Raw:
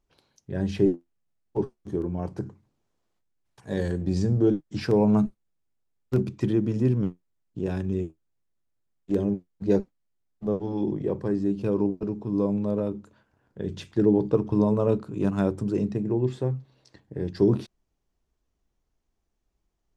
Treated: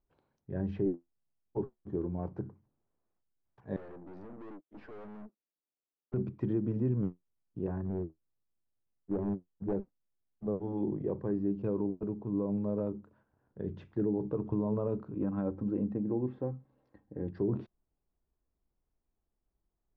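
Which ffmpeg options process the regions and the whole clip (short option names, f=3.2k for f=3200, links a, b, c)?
-filter_complex "[0:a]asettb=1/sr,asplit=3[a][b][c];[a]atrim=end=3.764[d];[b]atrim=start=3.76:end=6.14,asetpts=PTS-STARTPTS,afade=t=in:d=0.004:c=qsin,afade=t=out:st=2.376:d=0.004:c=qsin,highpass=f=240:w=0.5412,highpass=f=240:w=1.3066,adynamicsmooth=sensitivity=7.5:basefreq=3.2k,aeval=exprs='(tanh(100*val(0)+0.7)-tanh(0.7))/100':c=same[e];[c]atrim=start=6.136[f];[d][e]acrossfade=d=0.004:c1=hsin:c2=qsin[g];[g][f]acrossfade=d=0.004:c1=qsin:c2=hsin,asettb=1/sr,asplit=3[h][i][j];[h]atrim=end=7.674[k];[i]atrim=start=7.67:end=9.73,asetpts=PTS-STARTPTS,afade=t=in:d=0.004:c=qsin,afade=t=out:st=2.056:d=0.004:c=qsin,lowpass=f=1.7k:w=0.5412,lowpass=f=1.7k:w=1.3066,aeval=exprs='clip(val(0),-1,0.0708)':c=same[l];[j]atrim=start=9.726[m];[k][l]acrossfade=d=0.004:c1=hsin:c2=qsin[n];[n][m]acrossfade=d=0.004:c1=qsin:c2=hsin,asettb=1/sr,asplit=3[o][p][q];[o]atrim=end=15.144[r];[p]atrim=start=15.14:end=17.28,asetpts=PTS-STARTPTS,afade=t=in:d=0.004:c=qsin,afade=t=out:st=2.136:d=0.004:c=qsin,lowpass=f=2.1k:p=1,aecho=1:1:3.8:0.49,atrim=end_sample=94374[s];[q]atrim=start=17.276[t];[r][s]acrossfade=d=0.004:c1=hsin:c2=qsin[u];[u][t]acrossfade=d=0.004:c1=qsin:c2=hsin,lowpass=1.4k,alimiter=limit=-16.5dB:level=0:latency=1:release=68,volume=-6dB"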